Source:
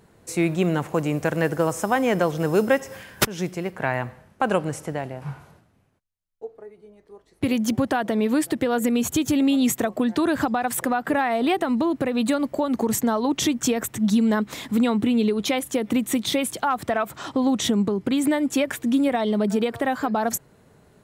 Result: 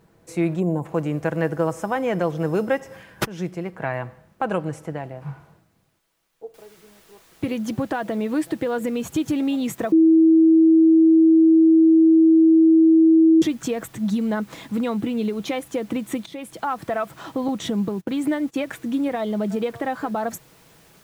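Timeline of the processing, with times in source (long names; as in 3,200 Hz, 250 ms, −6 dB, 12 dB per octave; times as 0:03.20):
0:00.60–0:00.85: gain on a spectral selection 1,100–6,700 Hz −20 dB
0:06.54: noise floor change −65 dB −47 dB
0:09.92–0:13.42: beep over 323 Hz −10.5 dBFS
0:16.26–0:16.66: fade in, from −17 dB
0:17.48–0:18.56: noise gate −30 dBFS, range −23 dB
whole clip: high-shelf EQ 3,300 Hz −9 dB; comb filter 6.1 ms, depth 32%; level −2 dB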